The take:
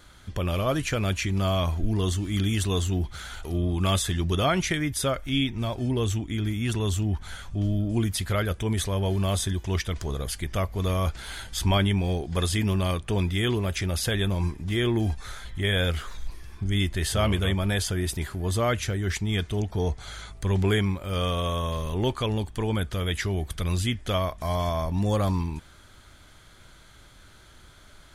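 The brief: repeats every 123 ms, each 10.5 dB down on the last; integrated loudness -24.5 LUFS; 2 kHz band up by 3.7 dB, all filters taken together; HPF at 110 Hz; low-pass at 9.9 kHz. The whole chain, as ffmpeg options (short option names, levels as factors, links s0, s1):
-af "highpass=110,lowpass=9900,equalizer=f=2000:t=o:g=4.5,aecho=1:1:123|246|369:0.299|0.0896|0.0269,volume=1.41"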